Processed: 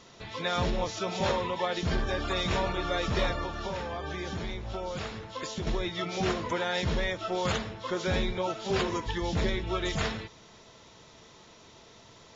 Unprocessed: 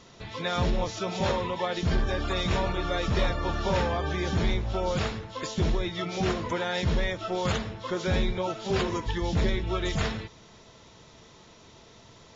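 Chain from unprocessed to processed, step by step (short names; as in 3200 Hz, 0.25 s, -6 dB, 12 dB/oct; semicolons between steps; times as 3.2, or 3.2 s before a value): low shelf 230 Hz -5 dB; 3.43–5.67 compressor, threshold -32 dBFS, peak gain reduction 9 dB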